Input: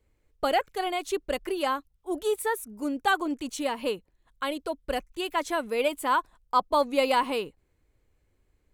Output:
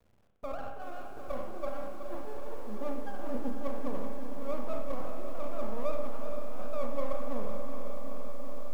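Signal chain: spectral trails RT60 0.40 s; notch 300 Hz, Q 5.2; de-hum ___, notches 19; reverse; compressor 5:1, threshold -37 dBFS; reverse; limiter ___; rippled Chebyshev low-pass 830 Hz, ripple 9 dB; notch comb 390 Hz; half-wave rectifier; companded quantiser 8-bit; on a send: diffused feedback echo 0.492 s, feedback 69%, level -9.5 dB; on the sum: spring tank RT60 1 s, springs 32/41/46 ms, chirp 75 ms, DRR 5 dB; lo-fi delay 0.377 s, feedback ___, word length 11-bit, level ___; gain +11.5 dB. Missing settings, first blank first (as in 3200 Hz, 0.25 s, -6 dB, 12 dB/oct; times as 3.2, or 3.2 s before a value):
221.2 Hz, -30.5 dBFS, 80%, -10.5 dB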